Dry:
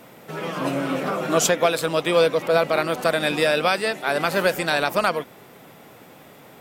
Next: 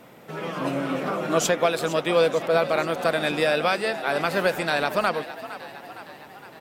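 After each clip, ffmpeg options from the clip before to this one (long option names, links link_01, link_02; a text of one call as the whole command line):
ffmpeg -i in.wav -filter_complex "[0:a]highshelf=frequency=5400:gain=-5.5,asplit=7[link_01][link_02][link_03][link_04][link_05][link_06][link_07];[link_02]adelay=461,afreqshift=56,volume=-14.5dB[link_08];[link_03]adelay=922,afreqshift=112,volume=-18.9dB[link_09];[link_04]adelay=1383,afreqshift=168,volume=-23.4dB[link_10];[link_05]adelay=1844,afreqshift=224,volume=-27.8dB[link_11];[link_06]adelay=2305,afreqshift=280,volume=-32.2dB[link_12];[link_07]adelay=2766,afreqshift=336,volume=-36.7dB[link_13];[link_01][link_08][link_09][link_10][link_11][link_12][link_13]amix=inputs=7:normalize=0,volume=-2dB" out.wav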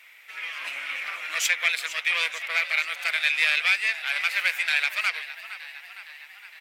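ffmpeg -i in.wav -af "aeval=exprs='0.398*(cos(1*acos(clip(val(0)/0.398,-1,1)))-cos(1*PI/2))+0.0794*(cos(4*acos(clip(val(0)/0.398,-1,1)))-cos(4*PI/2))':channel_layout=same,highpass=frequency=2200:width_type=q:width=4,volume=-1.5dB" out.wav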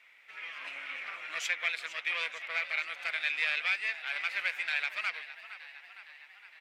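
ffmpeg -i in.wav -af "aemphasis=mode=reproduction:type=bsi,volume=-6.5dB" out.wav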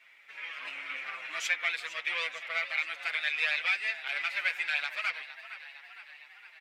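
ffmpeg -i in.wav -filter_complex "[0:a]asplit=2[link_01][link_02];[link_02]adelay=7,afreqshift=0.73[link_03];[link_01][link_03]amix=inputs=2:normalize=1,volume=4.5dB" out.wav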